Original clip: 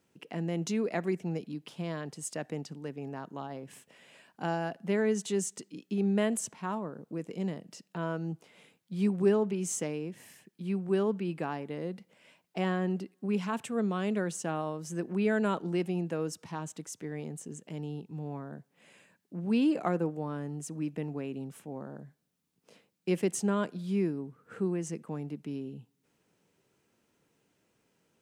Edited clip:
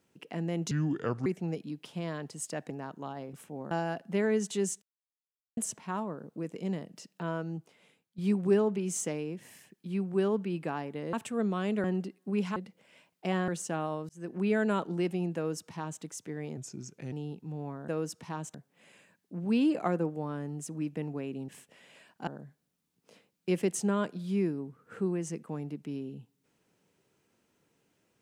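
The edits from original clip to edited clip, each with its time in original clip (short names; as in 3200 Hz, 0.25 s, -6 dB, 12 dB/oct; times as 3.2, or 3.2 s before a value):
0.71–1.09 speed 69%
2.53–3.04 cut
3.67–4.46 swap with 21.49–21.87
5.57–6.32 mute
8.02–8.93 fade out, to -11 dB
11.88–12.8 swap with 13.52–14.23
14.84–15.14 fade in
16.11–16.77 copy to 18.55
17.32–17.79 speed 85%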